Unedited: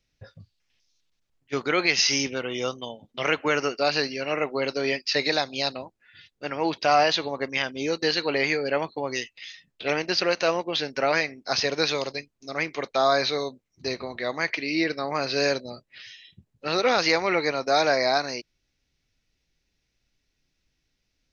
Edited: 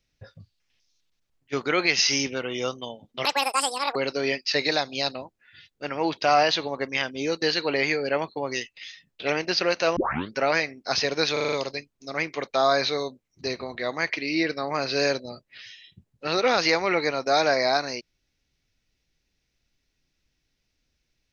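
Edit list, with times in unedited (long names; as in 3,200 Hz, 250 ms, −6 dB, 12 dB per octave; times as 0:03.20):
0:03.25–0:04.56: play speed 186%
0:10.57: tape start 0.40 s
0:11.93: stutter 0.04 s, 6 plays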